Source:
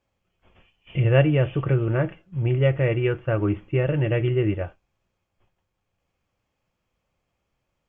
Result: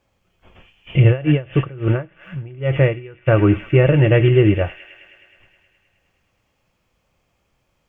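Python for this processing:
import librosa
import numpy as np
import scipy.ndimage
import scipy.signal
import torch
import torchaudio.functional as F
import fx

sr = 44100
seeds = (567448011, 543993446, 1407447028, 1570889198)

y = fx.echo_wet_highpass(x, sr, ms=105, feedback_pct=76, hz=2300.0, wet_db=-7.0)
y = fx.tremolo_db(y, sr, hz=fx.line((1.1, 4.6), (3.26, 1.3)), depth_db=25, at=(1.1, 3.26), fade=0.02)
y = F.gain(torch.from_numpy(y), 9.0).numpy()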